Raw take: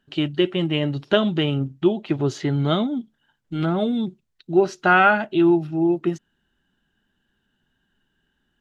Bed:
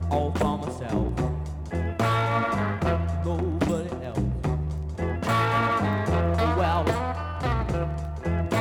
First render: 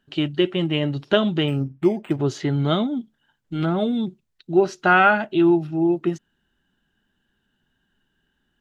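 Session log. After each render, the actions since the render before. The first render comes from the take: 1.48–2.20 s: decimation joined by straight lines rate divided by 8×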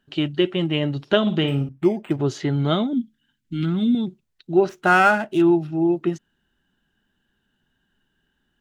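1.21–1.69 s: flutter echo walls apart 9.7 m, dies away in 0.33 s; 2.93–3.95 s: FFT filter 150 Hz 0 dB, 250 Hz +6 dB, 610 Hz -21 dB, 2.2 kHz 0 dB; 4.69–5.42 s: median filter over 9 samples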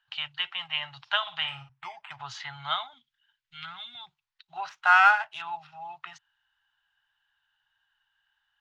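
elliptic band-stop 120–860 Hz, stop band 40 dB; three-band isolator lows -21 dB, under 290 Hz, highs -23 dB, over 5.5 kHz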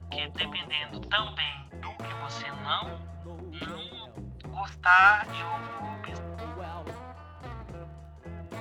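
add bed -15.5 dB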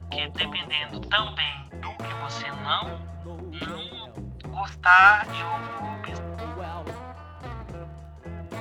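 trim +4 dB

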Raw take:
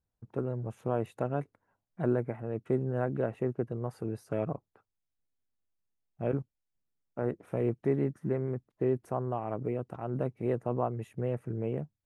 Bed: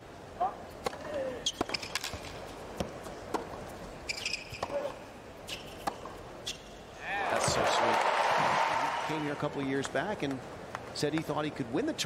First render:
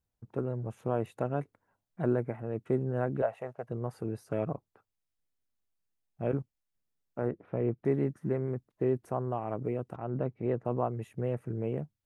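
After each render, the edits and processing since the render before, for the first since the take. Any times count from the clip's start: 3.22–3.69 s: resonant low shelf 460 Hz -11.5 dB, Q 3; 7.28–7.85 s: distance through air 320 m; 9.96–10.65 s: distance through air 170 m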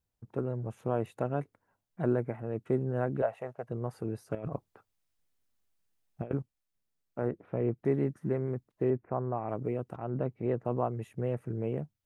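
4.35–6.31 s: compressor with a negative ratio -36 dBFS, ratio -0.5; 8.90–9.49 s: steep low-pass 2.5 kHz 72 dB/octave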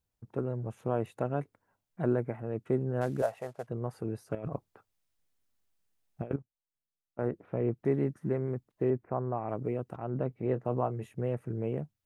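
3.01–3.67 s: CVSD coder 64 kbps; 6.36–7.19 s: gain -12 dB; 10.28–11.14 s: doubling 23 ms -13.5 dB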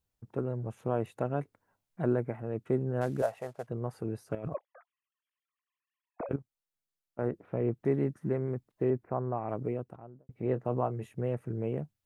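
4.54–6.29 s: formants replaced by sine waves; 9.61–10.29 s: studio fade out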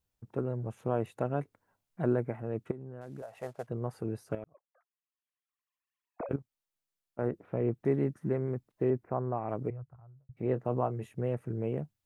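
2.71–3.43 s: compression, threshold -40 dBFS; 4.44–6.33 s: fade in; 9.70–10.37 s: FFT filter 140 Hz 0 dB, 210 Hz -26 dB, 1.3 kHz -8 dB, 3.2 kHz -24 dB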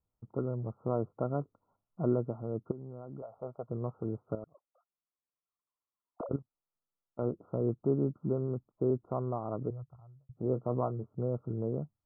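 Chebyshev low-pass 1.4 kHz, order 10; dynamic bell 820 Hz, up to -4 dB, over -48 dBFS, Q 2.9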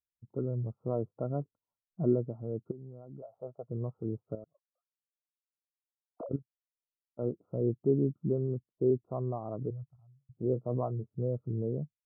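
in parallel at -2.5 dB: peak limiter -28 dBFS, peak gain reduction 10 dB; on the sum: spectral contrast expander 1.5:1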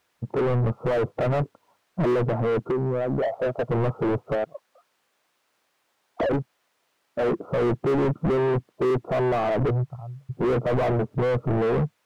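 overdrive pedal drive 42 dB, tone 1 kHz, clips at -16 dBFS; in parallel at -9.5 dB: hard clipper -29 dBFS, distortion -10 dB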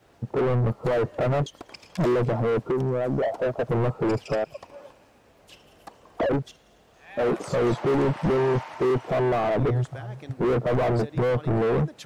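add bed -10 dB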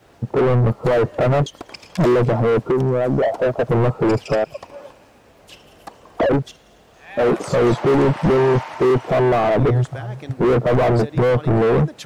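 trim +7 dB

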